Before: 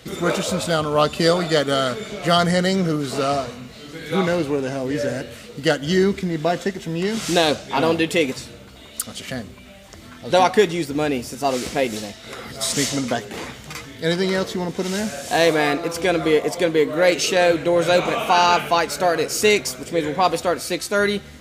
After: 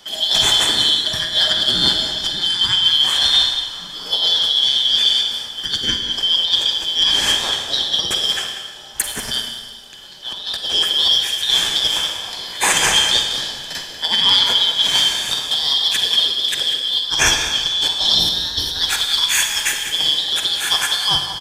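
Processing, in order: four-band scrambler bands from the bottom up 3412; negative-ratio compressor -21 dBFS, ratio -0.5; bell 1700 Hz +6 dB 0.21 oct; outdoor echo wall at 33 m, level -9 dB; Schroeder reverb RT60 1.9 s, DRR 4 dB; three-band expander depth 40%; gain +3.5 dB

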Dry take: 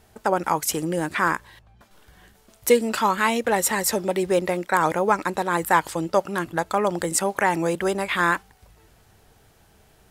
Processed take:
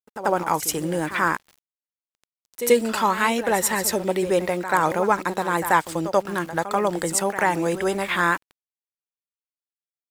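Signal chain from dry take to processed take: sample gate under -40 dBFS; reverse echo 86 ms -12 dB

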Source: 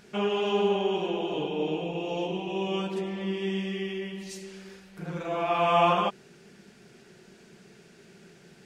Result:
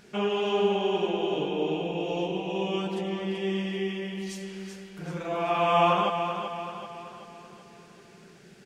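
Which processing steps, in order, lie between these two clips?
feedback echo 0.383 s, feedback 48%, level -8 dB

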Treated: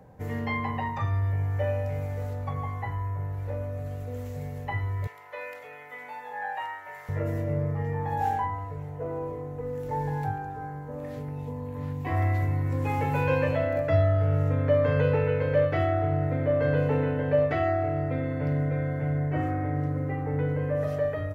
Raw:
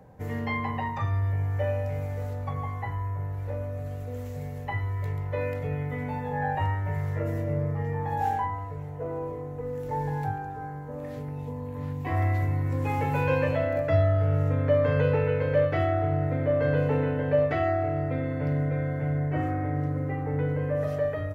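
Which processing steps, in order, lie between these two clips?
5.07–7.09 HPF 890 Hz 12 dB/oct

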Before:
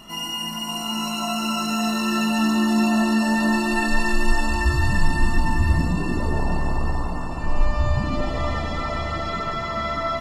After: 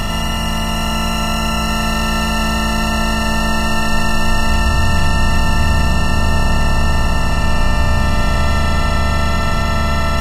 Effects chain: per-bin compression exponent 0.2; bell 300 Hz -8 dB 0.88 oct; gain -1 dB

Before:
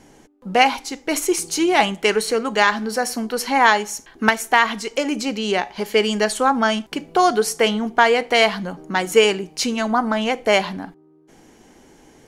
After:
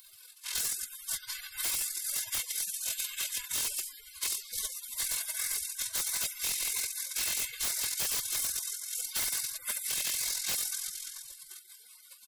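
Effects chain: cycle switcher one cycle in 3, inverted; compressor 1.5:1, threshold -22 dBFS, peak gain reduction 5 dB; formant-preserving pitch shift -9.5 st; dynamic EQ 2200 Hz, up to -6 dB, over -42 dBFS, Q 4.5; reverb, pre-delay 3 ms, DRR -5.5 dB; AM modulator 43 Hz, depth 55%; high shelf 12000 Hz +10 dB; notch 1500 Hz, Q 25; spectral gate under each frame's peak -30 dB weak; comb 1.9 ms, depth 63%; wavefolder -33 dBFS; three-band squash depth 40%; gain +7.5 dB

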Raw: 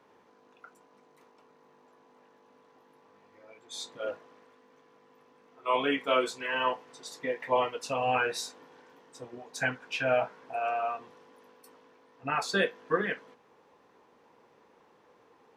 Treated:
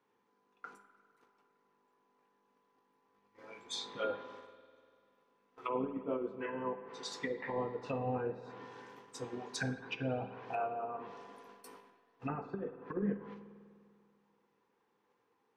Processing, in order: gate -57 dBFS, range -18 dB; bell 620 Hz -10.5 dB 0.27 oct; treble ducked by the level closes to 380 Hz, closed at -29.5 dBFS; negative-ratio compressor -36 dBFS, ratio -0.5; resonator 200 Hz, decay 0.53 s, harmonics all, mix 60%; spring tank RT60 2.2 s, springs 49 ms, chirp 65 ms, DRR 11 dB; gain +9 dB

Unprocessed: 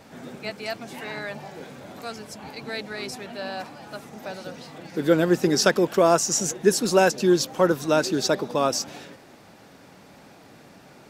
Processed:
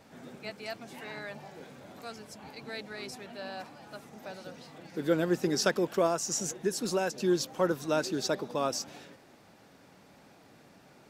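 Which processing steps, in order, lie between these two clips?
6.06–7.16 compressor, threshold -17 dBFS, peak gain reduction 6 dB; gain -8 dB

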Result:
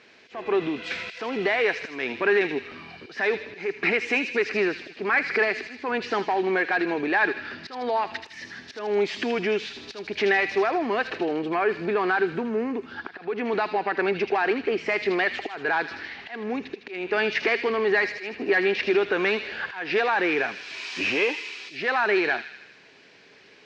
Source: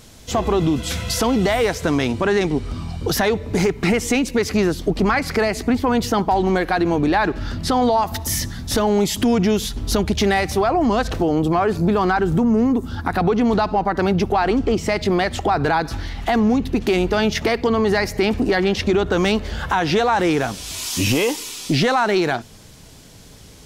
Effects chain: high shelf 2700 Hz +9 dB; auto swell 0.274 s; wavefolder -10 dBFS; speaker cabinet 310–3700 Hz, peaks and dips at 400 Hz +7 dB, 1700 Hz +9 dB, 2400 Hz +8 dB, 3400 Hz -7 dB; on a send: thin delay 79 ms, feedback 60%, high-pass 2800 Hz, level -4 dB; on the sum: gain -8 dB

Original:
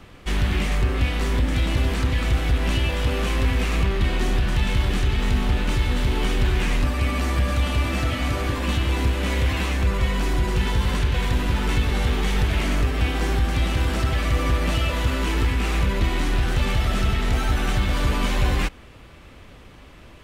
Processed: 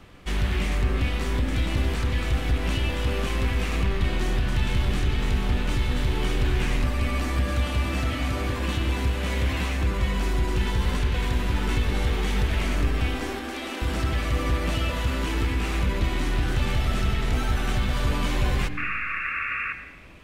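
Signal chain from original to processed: 13.14–13.82 elliptic high-pass 230 Hz; 18.77–19.73 painted sound noise 1100–2800 Hz -26 dBFS; on a send: reverb RT60 1.1 s, pre-delay 76 ms, DRR 10.5 dB; on the sum: gain -3.5 dB

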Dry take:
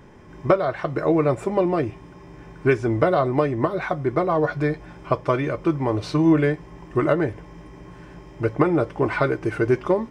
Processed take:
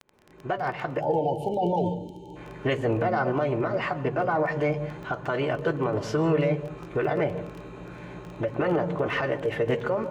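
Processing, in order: opening faded in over 1.18 s; low shelf 110 Hz -10 dB; crackle 17/s -31 dBFS; high shelf 3900 Hz -11.5 dB; in parallel at -2 dB: compressor, threshold -32 dBFS, peak gain reduction 17 dB; on the sum: limiter -14.5 dBFS, peak gain reduction 11 dB; spectral delete 1–2.36, 920–2200 Hz; formant shift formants +4 st; thin delay 0.373 s, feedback 63%, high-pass 5300 Hz, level -22 dB; on a send at -14.5 dB: reverb RT60 0.40 s, pre-delay 0.123 s; on the sum: gain -2 dB

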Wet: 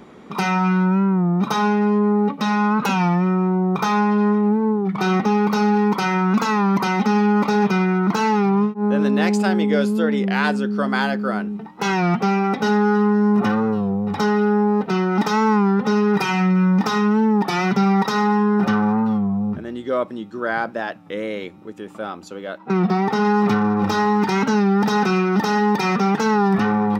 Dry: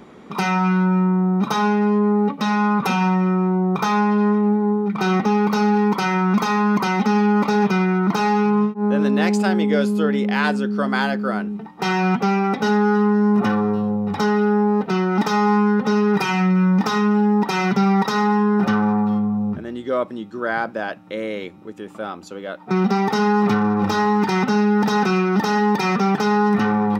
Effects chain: 22.58–23.25 high shelf 4700 Hz -9 dB; record warp 33 1/3 rpm, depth 100 cents

